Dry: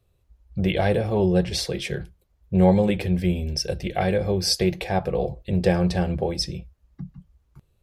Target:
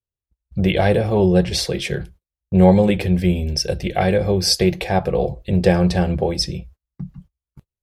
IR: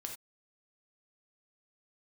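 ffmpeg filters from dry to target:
-af "agate=range=-32dB:threshold=-47dB:ratio=16:detection=peak,volume=5dB"

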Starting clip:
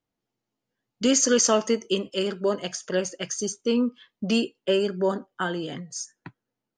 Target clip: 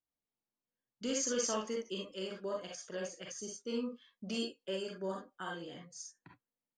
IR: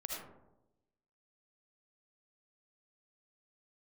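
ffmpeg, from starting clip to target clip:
-filter_complex "[0:a]asettb=1/sr,asplit=3[a][b][c];[a]atrim=end=3.674[d];[b]atrim=start=3.67:end=5.55,asetpts=PTS-STARTPTS,afade=t=in:d=0.004:c=qsin,afade=t=out:st=1.876:d=0.004:c=qsin,highshelf=f=5.9k:g=8[e];[c]atrim=start=5.546[f];[d][e]acrossfade=d=0.004:c1=hsin:c2=qsin[g];[g][f]acrossfade=d=0.004:c1=qsin:c2=hsin[h];[1:a]atrim=start_sample=2205,afade=t=out:st=0.18:d=0.01,atrim=end_sample=8379,asetrate=74970,aresample=44100[i];[h][i]afir=irnorm=-1:irlink=0,volume=-7.5dB"

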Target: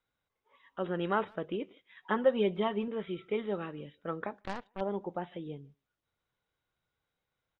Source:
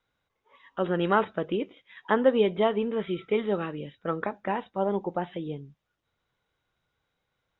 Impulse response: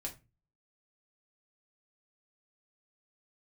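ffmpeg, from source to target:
-filter_complex "[0:a]asettb=1/sr,asplit=3[a][b][c];[a]atrim=end=2.024[d];[b]atrim=start=2.02:end=2.88,asetpts=PTS-STARTPTS,afade=t=in:d=0.004:c=qsin,afade=t=out:st=0.856:d=0.004:c=qsin,aecho=1:1:5.4:0.65,atrim=end_sample=37926[e];[c]atrim=start=2.876[f];[d][e]acrossfade=d=0.004:c1=hsin:c2=qsin[g];[g][f]acrossfade=d=0.004:c1=qsin:c2=hsin,asplit=2[h][i];[i]adelay=150,highpass=300,lowpass=3.4k,asoftclip=type=hard:threshold=-17.5dB,volume=-27dB[j];[h][j]amix=inputs=2:normalize=0,asettb=1/sr,asplit=3[k][l][m];[k]atrim=end=4.414[n];[l]atrim=start=4.41:end=4.81,asetpts=PTS-STARTPTS,afade=t=in:d=0.004:c=qsin,afade=t=out:st=0.396:d=0.004:c=qsin,aeval=exprs='0.178*(cos(1*acos(clip(val(0)/0.178,-1,1)))-cos(1*PI/2))+0.0355*(cos(3*acos(clip(val(0)/0.178,-1,1)))-cos(3*PI/2))+0.00316*(cos(7*acos(clip(val(0)/0.178,-1,1)))-cos(7*PI/2))+0.0178*(cos(8*acos(clip(val(0)/0.178,-1,1)))-cos(8*PI/2))':c=same[o];[m]atrim=start=4.806[p];[n][o]acrossfade=d=0.004:c1=hsin:c2=qsin[q];[q][p]acrossfade=d=0.004:c1=qsin:c2=hsin,volume=-7dB"

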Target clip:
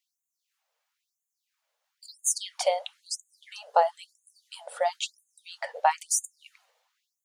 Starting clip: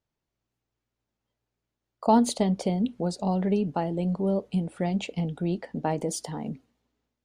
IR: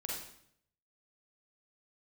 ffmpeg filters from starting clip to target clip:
-filter_complex "[0:a]asettb=1/sr,asplit=3[a][b][c];[a]atrim=end=2.974[d];[b]atrim=start=2.97:end=5.62,asetpts=PTS-STARTPTS,afade=t=in:d=0.004:c=qsin,afade=t=out:st=2.646:d=0.004:c=qsin,equalizer=f=2.4k:t=o:w=0.55:g=-10[e];[c]atrim=start=5.616[f];[d][e]acrossfade=d=0.004:c1=hsin:c2=qsin[g];[g][f]acrossfade=d=0.004:c1=qsin:c2=hsin,alimiter=level_in=13dB:limit=-1dB:release=50:level=0:latency=1,afftfilt=real='re*gte(b*sr/1024,440*pow(6400/440,0.5+0.5*sin(2*PI*1*pts/sr)))':imag='im*gte(b*sr/1024,440*pow(6400/440,0.5+0.5*sin(2*PI*1*pts/sr)))':win_size=1024:overlap=0.75,volume=-3.5dB"

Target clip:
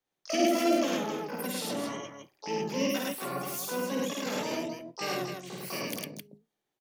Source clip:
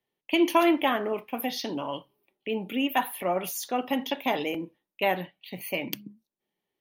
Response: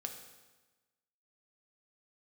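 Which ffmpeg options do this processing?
-filter_complex "[0:a]acrossover=split=460|2500[a][b][c];[b]acompressor=threshold=-40dB:ratio=16[d];[a][d][c]amix=inputs=3:normalize=0,asplit=4[e][f][g][h];[f]asetrate=33038,aresample=44100,atempo=1.33484,volume=-5dB[i];[g]asetrate=55563,aresample=44100,atempo=0.793701,volume=-18dB[j];[h]asetrate=88200,aresample=44100,atempo=0.5,volume=0dB[k];[e][i][j][k]amix=inputs=4:normalize=0,aecho=1:1:52.48|105|262.4:0.708|0.891|0.501,volume=-7.5dB"

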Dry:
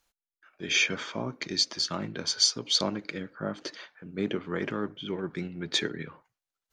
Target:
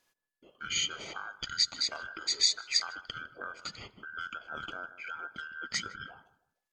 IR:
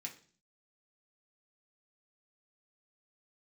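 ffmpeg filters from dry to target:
-filter_complex "[0:a]afftfilt=real='real(if(between(b,1,1012),(2*floor((b-1)/92)+1)*92-b,b),0)':imag='imag(if(between(b,1,1012),(2*floor((b-1)/92)+1)*92-b,b),0)*if(between(b,1,1012),-1,1)':win_size=2048:overlap=0.75,acrossover=split=4400[a][b];[a]acompressor=threshold=-39dB:ratio=4[c];[c][b]amix=inputs=2:normalize=0,asetrate=38170,aresample=44100,atempo=1.15535,asplit=2[d][e];[e]adelay=155,lowpass=f=1.2k:p=1,volume=-14dB,asplit=2[f][g];[g]adelay=155,lowpass=f=1.2k:p=1,volume=0.32,asplit=2[h][i];[i]adelay=155,lowpass=f=1.2k:p=1,volume=0.32[j];[d][f][h][j]amix=inputs=4:normalize=0"

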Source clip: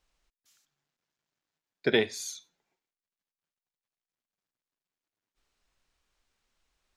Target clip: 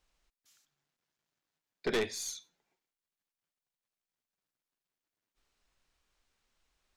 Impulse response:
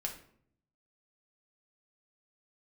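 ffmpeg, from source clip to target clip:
-af "aeval=exprs='(tanh(20*val(0)+0.25)-tanh(0.25))/20':c=same"

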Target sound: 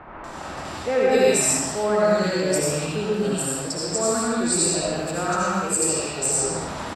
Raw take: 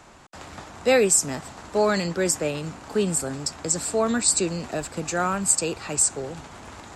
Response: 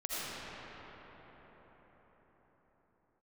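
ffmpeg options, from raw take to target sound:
-filter_complex "[0:a]lowshelf=f=470:g=-4,bandreject=f=6.6k:w=9.6,areverse,acompressor=mode=upward:threshold=-24dB:ratio=2.5,areverse,acrossover=split=2100[a][b];[b]adelay=240[c];[a][c]amix=inputs=2:normalize=0[d];[1:a]atrim=start_sample=2205,afade=t=out:st=0.43:d=0.01,atrim=end_sample=19404[e];[d][e]afir=irnorm=-1:irlink=0"

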